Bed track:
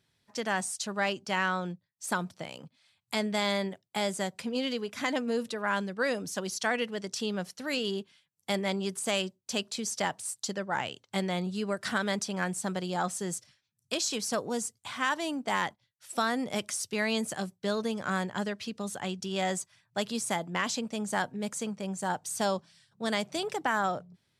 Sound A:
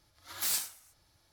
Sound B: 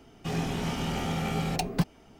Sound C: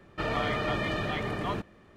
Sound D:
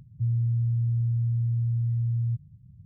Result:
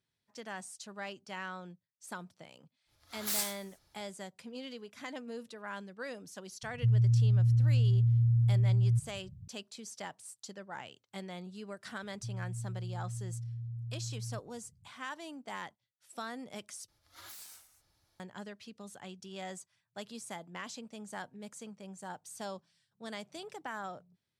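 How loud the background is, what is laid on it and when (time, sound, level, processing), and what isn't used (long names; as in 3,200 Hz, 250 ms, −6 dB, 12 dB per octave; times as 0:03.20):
bed track −12.5 dB
0:02.85: mix in A −2 dB, fades 0.10 s
0:06.63: mix in D
0:12.03: mix in D −14.5 dB
0:16.88: overwrite with A −5.5 dB + downward compressor 10 to 1, threshold −40 dBFS
not used: B, C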